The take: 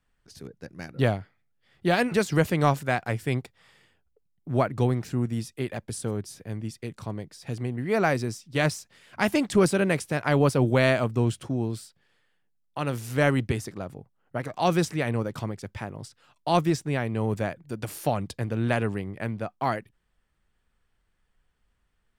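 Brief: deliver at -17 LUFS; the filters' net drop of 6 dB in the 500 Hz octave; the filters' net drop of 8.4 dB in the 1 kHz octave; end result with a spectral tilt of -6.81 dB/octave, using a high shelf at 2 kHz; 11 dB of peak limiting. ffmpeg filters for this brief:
-af "equalizer=f=500:t=o:g=-5,equalizer=f=1000:t=o:g=-8.5,highshelf=f=2000:g=-6,volume=7.5,alimiter=limit=0.531:level=0:latency=1"

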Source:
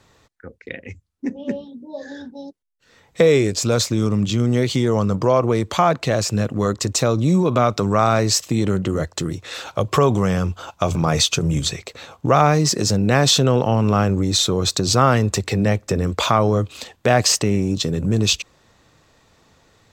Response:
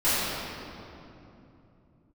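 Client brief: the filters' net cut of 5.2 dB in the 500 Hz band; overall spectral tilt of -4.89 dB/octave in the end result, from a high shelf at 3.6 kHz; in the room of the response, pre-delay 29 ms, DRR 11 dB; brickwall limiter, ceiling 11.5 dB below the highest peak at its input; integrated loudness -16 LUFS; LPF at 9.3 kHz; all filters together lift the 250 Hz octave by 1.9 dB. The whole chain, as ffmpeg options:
-filter_complex "[0:a]lowpass=9300,equalizer=f=250:t=o:g=4.5,equalizer=f=500:t=o:g=-8,highshelf=f=3600:g=4,alimiter=limit=0.237:level=0:latency=1,asplit=2[s0][s1];[1:a]atrim=start_sample=2205,adelay=29[s2];[s1][s2]afir=irnorm=-1:irlink=0,volume=0.0422[s3];[s0][s3]amix=inputs=2:normalize=0,volume=2"

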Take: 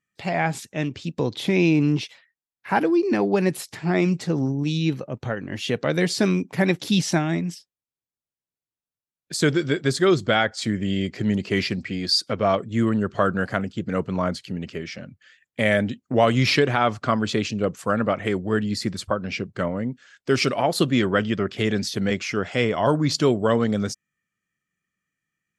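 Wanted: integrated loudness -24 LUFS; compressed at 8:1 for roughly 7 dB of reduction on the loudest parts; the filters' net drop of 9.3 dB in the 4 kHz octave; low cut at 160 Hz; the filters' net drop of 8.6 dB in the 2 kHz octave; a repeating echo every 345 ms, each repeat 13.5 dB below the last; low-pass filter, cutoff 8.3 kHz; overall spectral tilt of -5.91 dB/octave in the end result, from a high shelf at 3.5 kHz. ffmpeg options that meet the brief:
-af "highpass=160,lowpass=8300,equalizer=f=2000:t=o:g=-8.5,highshelf=f=3500:g=-6.5,equalizer=f=4000:t=o:g=-4.5,acompressor=threshold=0.0794:ratio=8,aecho=1:1:345|690:0.211|0.0444,volume=1.78"

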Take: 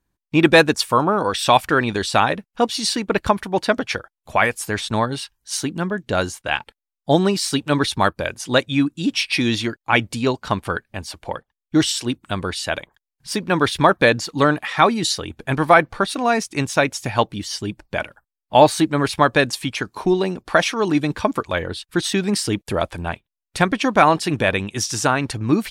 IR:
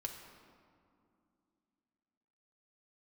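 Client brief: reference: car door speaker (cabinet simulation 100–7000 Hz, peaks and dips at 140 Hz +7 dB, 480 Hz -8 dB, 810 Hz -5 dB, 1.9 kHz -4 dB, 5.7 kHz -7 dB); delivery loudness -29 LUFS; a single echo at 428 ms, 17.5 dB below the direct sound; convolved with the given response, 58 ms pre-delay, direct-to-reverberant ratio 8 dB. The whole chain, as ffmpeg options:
-filter_complex "[0:a]aecho=1:1:428:0.133,asplit=2[s0][s1];[1:a]atrim=start_sample=2205,adelay=58[s2];[s1][s2]afir=irnorm=-1:irlink=0,volume=0.447[s3];[s0][s3]amix=inputs=2:normalize=0,highpass=100,equalizer=f=140:t=q:w=4:g=7,equalizer=f=480:t=q:w=4:g=-8,equalizer=f=810:t=q:w=4:g=-5,equalizer=f=1900:t=q:w=4:g=-4,equalizer=f=5700:t=q:w=4:g=-7,lowpass=f=7000:w=0.5412,lowpass=f=7000:w=1.3066,volume=0.376"

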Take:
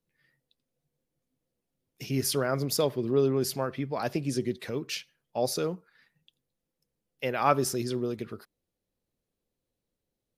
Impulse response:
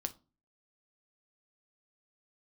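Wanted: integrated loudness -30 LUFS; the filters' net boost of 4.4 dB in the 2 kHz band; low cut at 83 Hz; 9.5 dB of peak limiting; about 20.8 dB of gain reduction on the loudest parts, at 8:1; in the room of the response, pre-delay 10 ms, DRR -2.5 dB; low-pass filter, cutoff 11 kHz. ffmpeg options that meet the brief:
-filter_complex "[0:a]highpass=83,lowpass=11000,equalizer=f=2000:t=o:g=6,acompressor=threshold=0.0126:ratio=8,alimiter=level_in=2.51:limit=0.0631:level=0:latency=1,volume=0.398,asplit=2[s0][s1];[1:a]atrim=start_sample=2205,adelay=10[s2];[s1][s2]afir=irnorm=-1:irlink=0,volume=1.41[s3];[s0][s3]amix=inputs=2:normalize=0,volume=2.82"

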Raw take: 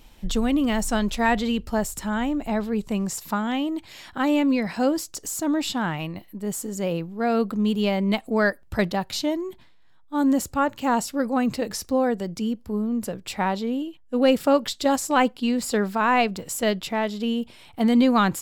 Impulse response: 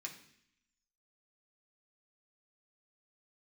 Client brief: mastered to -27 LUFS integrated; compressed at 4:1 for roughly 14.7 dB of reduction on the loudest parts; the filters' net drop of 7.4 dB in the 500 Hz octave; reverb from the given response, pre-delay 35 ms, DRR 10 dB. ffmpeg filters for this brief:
-filter_complex "[0:a]equalizer=f=500:t=o:g=-9,acompressor=threshold=0.0178:ratio=4,asplit=2[s0][s1];[1:a]atrim=start_sample=2205,adelay=35[s2];[s1][s2]afir=irnorm=-1:irlink=0,volume=0.422[s3];[s0][s3]amix=inputs=2:normalize=0,volume=2.99"

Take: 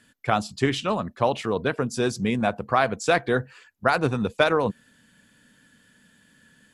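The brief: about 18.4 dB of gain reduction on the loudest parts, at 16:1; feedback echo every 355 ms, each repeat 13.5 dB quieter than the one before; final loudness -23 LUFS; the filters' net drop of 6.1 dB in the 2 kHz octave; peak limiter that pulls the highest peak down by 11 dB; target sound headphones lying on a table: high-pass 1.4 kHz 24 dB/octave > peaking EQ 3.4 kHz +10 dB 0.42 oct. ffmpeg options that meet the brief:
-af "equalizer=f=2000:t=o:g=-8,acompressor=threshold=0.0178:ratio=16,alimiter=level_in=2.51:limit=0.0631:level=0:latency=1,volume=0.398,highpass=f=1400:w=0.5412,highpass=f=1400:w=1.3066,equalizer=f=3400:t=o:w=0.42:g=10,aecho=1:1:355|710:0.211|0.0444,volume=20"

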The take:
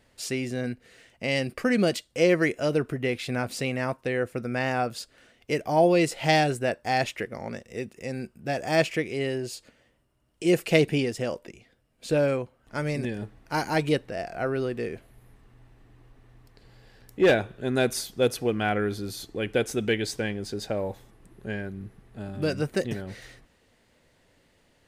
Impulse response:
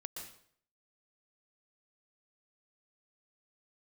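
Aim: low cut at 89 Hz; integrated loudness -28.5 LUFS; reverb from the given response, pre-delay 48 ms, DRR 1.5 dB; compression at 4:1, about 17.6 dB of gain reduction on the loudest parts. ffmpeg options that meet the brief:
-filter_complex "[0:a]highpass=89,acompressor=threshold=0.0126:ratio=4,asplit=2[s0][s1];[1:a]atrim=start_sample=2205,adelay=48[s2];[s1][s2]afir=irnorm=-1:irlink=0,volume=1.12[s3];[s0][s3]amix=inputs=2:normalize=0,volume=2.99"

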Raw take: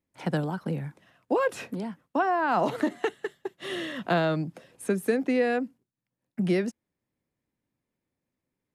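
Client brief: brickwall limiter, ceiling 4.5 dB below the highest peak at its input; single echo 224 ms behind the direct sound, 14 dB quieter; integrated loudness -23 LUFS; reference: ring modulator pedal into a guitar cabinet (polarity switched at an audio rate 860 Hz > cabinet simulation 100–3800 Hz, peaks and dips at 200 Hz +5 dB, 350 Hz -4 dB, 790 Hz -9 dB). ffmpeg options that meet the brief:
-af "alimiter=limit=0.119:level=0:latency=1,aecho=1:1:224:0.2,aeval=exprs='val(0)*sgn(sin(2*PI*860*n/s))':c=same,highpass=100,equalizer=f=200:t=q:w=4:g=5,equalizer=f=350:t=q:w=4:g=-4,equalizer=f=790:t=q:w=4:g=-9,lowpass=f=3800:w=0.5412,lowpass=f=3800:w=1.3066,volume=2.37"

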